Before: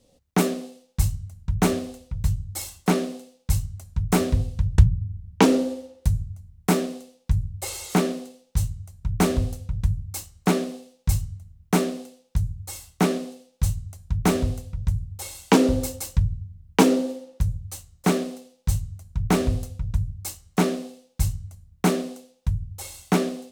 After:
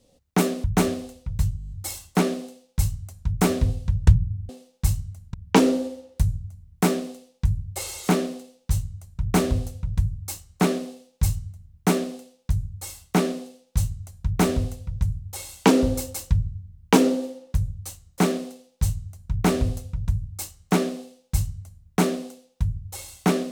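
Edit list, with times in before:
0.64–1.49 s: move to 5.20 s
2.42 s: stutter 0.02 s, 8 plays

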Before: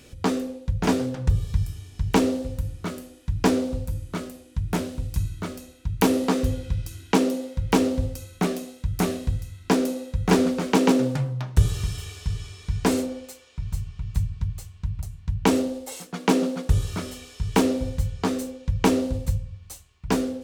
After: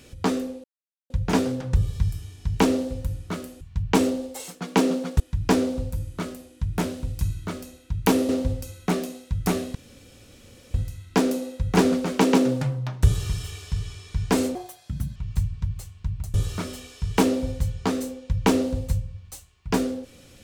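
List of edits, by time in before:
0.64 s: insert silence 0.46 s
6.24–7.82 s: delete
9.28 s: insert room tone 0.99 s
13.09–13.95 s: speed 141%
15.13–16.72 s: move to 3.15 s

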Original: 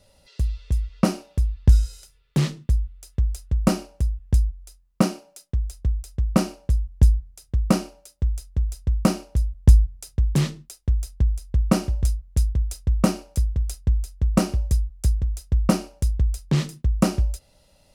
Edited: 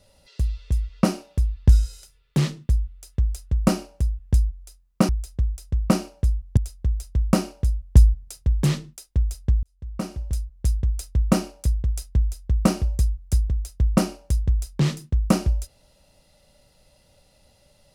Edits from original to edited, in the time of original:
5.09–5.55 s: delete
7.03–8.29 s: delete
11.35–12.58 s: fade in

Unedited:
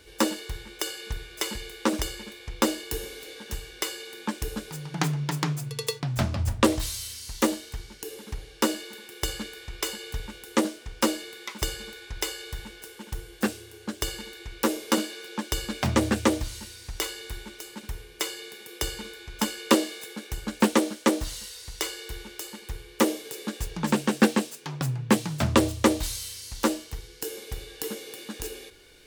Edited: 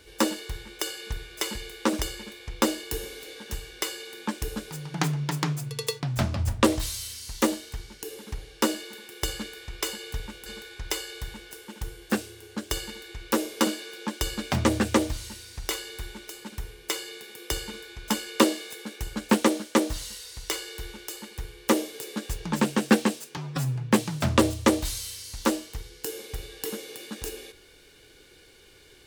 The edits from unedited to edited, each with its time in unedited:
10.46–11.77 s: delete
24.68–24.94 s: stretch 1.5×

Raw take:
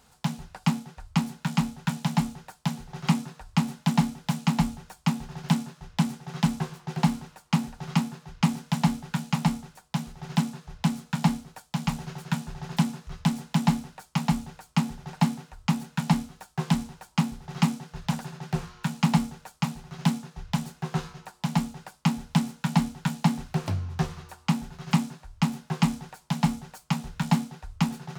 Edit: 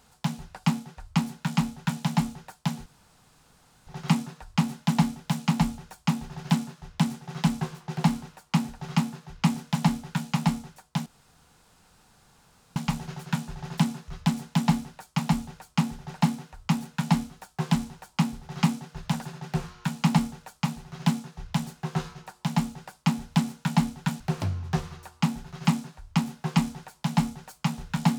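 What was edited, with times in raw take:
2.86 s: insert room tone 1.01 s
10.05–11.75 s: room tone
23.19–23.46 s: delete

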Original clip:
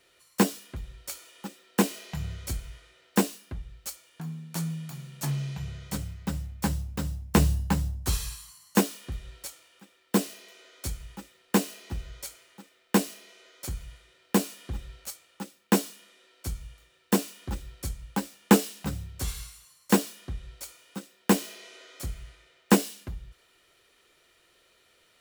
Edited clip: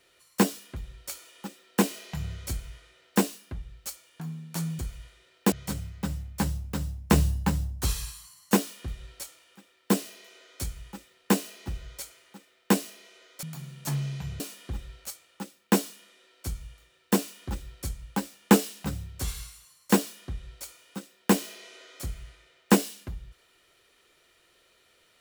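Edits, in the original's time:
4.79–5.76 s: swap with 13.67–14.40 s

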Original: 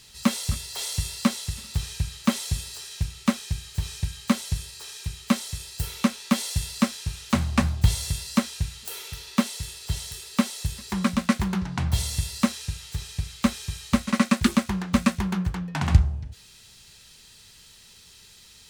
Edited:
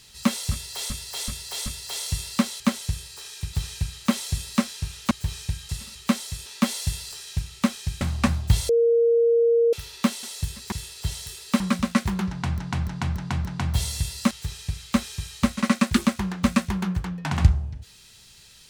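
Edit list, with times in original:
0.52–0.90 s: loop, 4 plays
1.46–1.72 s: swap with 4.23–5.16 s
2.76–3.65 s: swap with 6.81–7.35 s
5.67–6.15 s: delete
8.03–9.07 s: bleep 466 Hz -15.5 dBFS
10.45–10.94 s: move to 9.57 s
11.63–11.92 s: loop, 5 plays
12.49–12.81 s: delete

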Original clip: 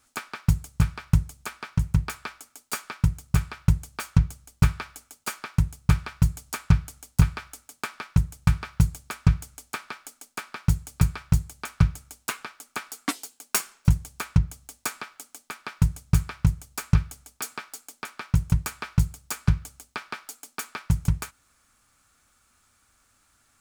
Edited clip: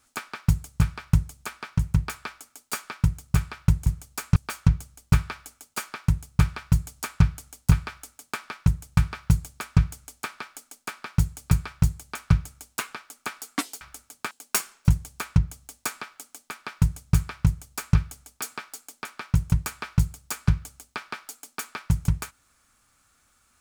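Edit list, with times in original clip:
7.40–7.90 s: copy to 13.31 s
16.46–16.96 s: copy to 3.86 s

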